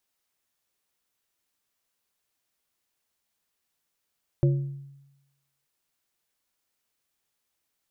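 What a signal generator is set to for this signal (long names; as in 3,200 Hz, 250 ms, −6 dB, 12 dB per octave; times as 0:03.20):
struck glass plate, length 1.24 s, lowest mode 139 Hz, modes 3, decay 0.97 s, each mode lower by 7 dB, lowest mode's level −16 dB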